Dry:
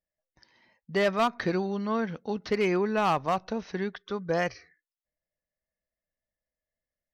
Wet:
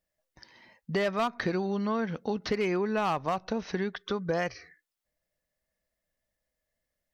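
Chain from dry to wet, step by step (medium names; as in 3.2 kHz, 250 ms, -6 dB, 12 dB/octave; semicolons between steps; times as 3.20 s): compression 3:1, threshold -36 dBFS, peak gain reduction 11 dB; trim +7 dB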